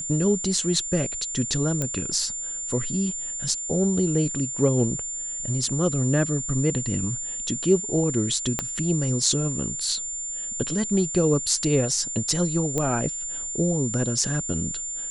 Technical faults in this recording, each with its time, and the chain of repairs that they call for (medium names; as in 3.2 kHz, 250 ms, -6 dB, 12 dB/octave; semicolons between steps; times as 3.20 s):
whine 7.2 kHz -29 dBFS
1.82 s: pop -12 dBFS
8.59 s: pop -9 dBFS
12.78 s: pop -12 dBFS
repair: de-click; band-stop 7.2 kHz, Q 30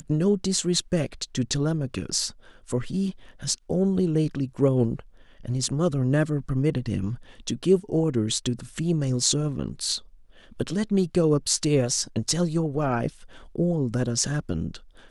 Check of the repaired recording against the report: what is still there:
8.59 s: pop